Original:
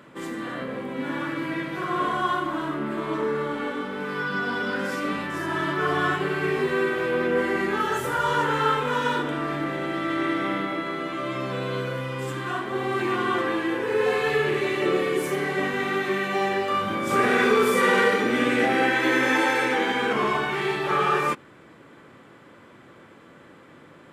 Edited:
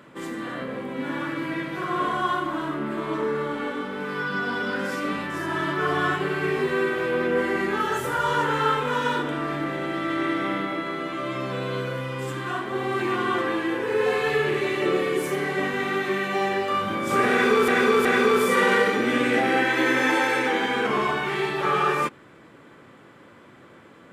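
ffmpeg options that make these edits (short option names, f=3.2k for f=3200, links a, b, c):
-filter_complex "[0:a]asplit=3[a][b][c];[a]atrim=end=17.682[d];[b]atrim=start=17.308:end=17.682[e];[c]atrim=start=17.308[f];[d][e]acrossfade=d=0.004:c1=hsin:c2=hsin[g];[g][f]acrossfade=d=0.004:c1=hsin:c2=hsin"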